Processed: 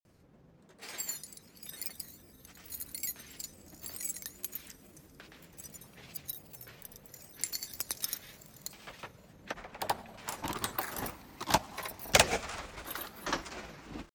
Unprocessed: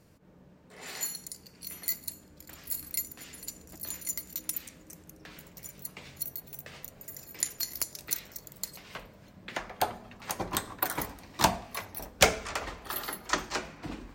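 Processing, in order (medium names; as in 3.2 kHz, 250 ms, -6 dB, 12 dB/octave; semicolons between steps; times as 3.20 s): Schroeder reverb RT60 3.2 s, combs from 30 ms, DRR 17.5 dB; granulator, pitch spread up and down by 3 st; trim -2.5 dB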